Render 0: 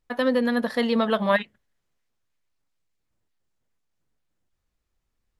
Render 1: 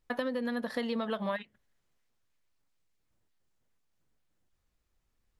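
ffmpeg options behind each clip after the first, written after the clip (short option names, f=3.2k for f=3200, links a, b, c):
-af "acompressor=threshold=-30dB:ratio=8"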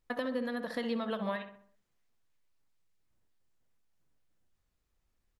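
-filter_complex "[0:a]asplit=2[a][b];[b]adelay=65,lowpass=f=1.9k:p=1,volume=-8dB,asplit=2[c][d];[d]adelay=65,lowpass=f=1.9k:p=1,volume=0.51,asplit=2[e][f];[f]adelay=65,lowpass=f=1.9k:p=1,volume=0.51,asplit=2[g][h];[h]adelay=65,lowpass=f=1.9k:p=1,volume=0.51,asplit=2[i][j];[j]adelay=65,lowpass=f=1.9k:p=1,volume=0.51,asplit=2[k][l];[l]adelay=65,lowpass=f=1.9k:p=1,volume=0.51[m];[a][c][e][g][i][k][m]amix=inputs=7:normalize=0,volume=-2dB"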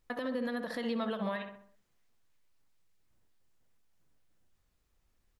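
-af "alimiter=level_in=5.5dB:limit=-24dB:level=0:latency=1:release=141,volume=-5.5dB,volume=4dB"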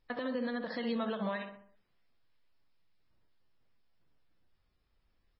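-ar 16000 -c:a libmp3lame -b:a 16k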